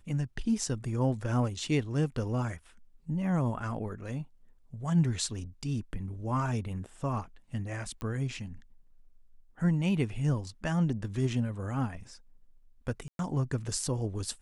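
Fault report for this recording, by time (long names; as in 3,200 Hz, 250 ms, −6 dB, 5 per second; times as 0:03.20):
0:08.01: click −25 dBFS
0:13.08–0:13.19: drop-out 112 ms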